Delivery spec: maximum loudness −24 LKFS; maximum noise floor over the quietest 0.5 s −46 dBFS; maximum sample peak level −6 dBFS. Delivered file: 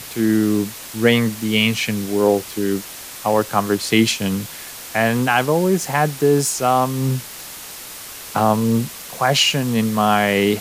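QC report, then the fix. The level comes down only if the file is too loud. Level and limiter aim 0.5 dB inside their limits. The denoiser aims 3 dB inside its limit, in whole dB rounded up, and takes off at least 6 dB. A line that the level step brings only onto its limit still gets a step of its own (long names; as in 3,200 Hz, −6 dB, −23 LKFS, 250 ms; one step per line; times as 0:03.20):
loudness −18.5 LKFS: out of spec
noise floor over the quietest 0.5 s −35 dBFS: out of spec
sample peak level −2.5 dBFS: out of spec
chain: broadband denoise 8 dB, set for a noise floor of −35 dBFS
level −6 dB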